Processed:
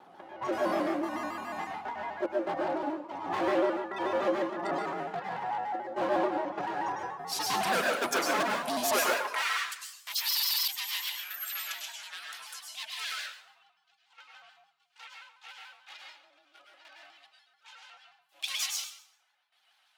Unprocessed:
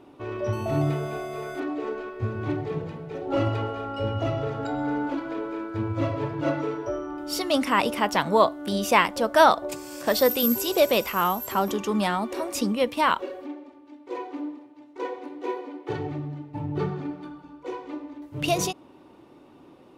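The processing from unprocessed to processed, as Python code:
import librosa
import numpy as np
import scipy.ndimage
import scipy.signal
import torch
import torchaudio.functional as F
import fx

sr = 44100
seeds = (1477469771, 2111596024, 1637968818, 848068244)

y = fx.step_gate(x, sr, bpm=73, pattern='x.xx.xxx.x', floor_db=-12.0, edge_ms=4.5)
y = y * np.sin(2.0 * np.pi * 460.0 * np.arange(len(y)) / sr)
y = np.clip(10.0 ** (25.5 / 20.0) * y, -1.0, 1.0) / 10.0 ** (25.5 / 20.0)
y = fx.filter_sweep_highpass(y, sr, from_hz=320.0, to_hz=3000.0, start_s=8.92, end_s=9.58, q=1.3)
y = fx.high_shelf(y, sr, hz=6500.0, db=7.5, at=(7.57, 9.34))
y = fx.dereverb_blind(y, sr, rt60_s=1.0)
y = fx.low_shelf(y, sr, hz=150.0, db=-6.5)
y = fx.rev_plate(y, sr, seeds[0], rt60_s=0.73, hf_ratio=0.8, predelay_ms=90, drr_db=-1.5)
y = fx.buffer_glitch(y, sr, at_s=(10.26,), block=2048, repeats=8)
y = fx.vibrato_shape(y, sr, shape='square', rate_hz=6.9, depth_cents=100.0)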